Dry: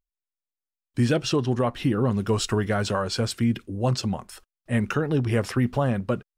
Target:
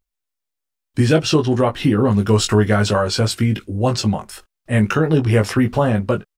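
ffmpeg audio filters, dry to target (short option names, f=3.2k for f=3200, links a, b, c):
-filter_complex "[0:a]asplit=2[a][b];[b]adelay=19,volume=-5dB[c];[a][c]amix=inputs=2:normalize=0,volume=6.5dB"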